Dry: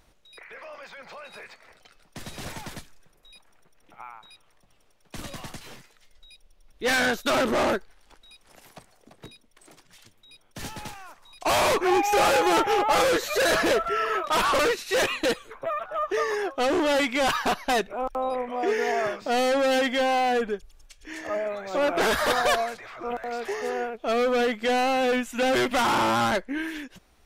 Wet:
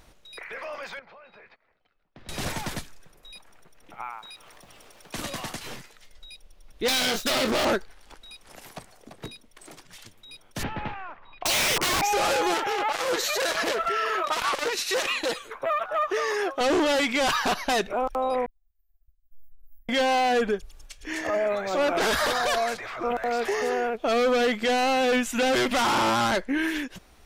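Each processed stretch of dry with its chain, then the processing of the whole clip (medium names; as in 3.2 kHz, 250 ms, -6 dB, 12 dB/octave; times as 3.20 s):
0.99–2.29 s: gate -49 dBFS, range -20 dB + compression 3:1, threshold -55 dBFS + distance through air 300 m
4.08–5.61 s: bass shelf 140 Hz -10 dB + upward compressor, threshold -45 dBFS + crackle 310 per s -57 dBFS
6.88–7.65 s: self-modulated delay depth 0.18 ms + doubling 23 ms -7 dB
10.63–12.02 s: low-pass 2.7 kHz 24 dB/octave + low-pass that closes with the level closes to 340 Hz, closed at -18 dBFS + integer overflow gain 24.5 dB
12.54–16.61 s: bass shelf 210 Hz -10 dB + transformer saturation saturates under 1.4 kHz
18.46–19.89 s: inverse Chebyshev band-stop 190–7600 Hz, stop band 70 dB + expander -56 dBFS + compression 3:1, threshold -46 dBFS
whole clip: dynamic bell 5.2 kHz, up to +4 dB, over -40 dBFS, Q 0.76; peak limiter -23.5 dBFS; trim +6 dB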